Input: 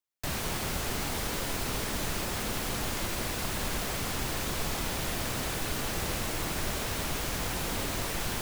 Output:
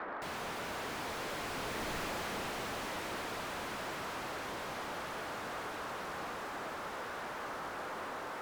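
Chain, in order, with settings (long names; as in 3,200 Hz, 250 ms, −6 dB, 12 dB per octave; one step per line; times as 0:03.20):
source passing by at 0:01.98, 23 m/s, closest 3.9 metres
noise in a band 180–1,600 Hz −62 dBFS
mid-hump overdrive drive 39 dB, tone 1,300 Hz, clips at −20 dBFS
level −6.5 dB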